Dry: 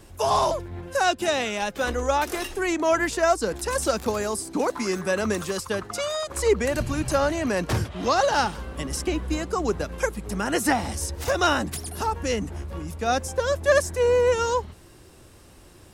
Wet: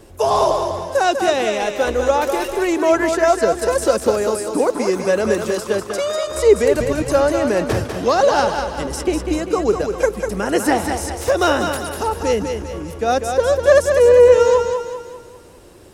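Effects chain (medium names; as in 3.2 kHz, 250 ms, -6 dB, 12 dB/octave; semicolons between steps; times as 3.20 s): peaking EQ 460 Hz +8 dB 1.3 oct; thinning echo 197 ms, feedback 48%, high-pass 260 Hz, level -5.5 dB; trim +1.5 dB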